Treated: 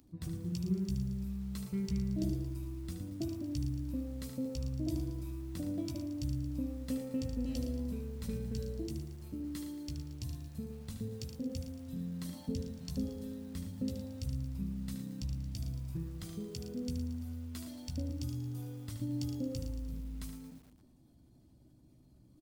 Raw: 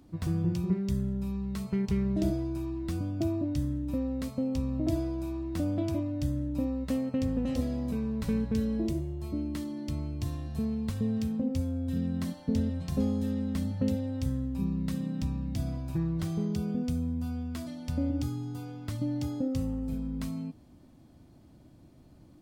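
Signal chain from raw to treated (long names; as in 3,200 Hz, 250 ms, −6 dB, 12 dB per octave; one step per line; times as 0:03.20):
spectral envelope exaggerated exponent 1.5
first-order pre-emphasis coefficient 0.9
on a send: ambience of single reflections 16 ms −7.5 dB, 75 ms −8 dB
on the sum: feedback echo at a low word length 113 ms, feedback 55%, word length 11 bits, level −10 dB
level +11.5 dB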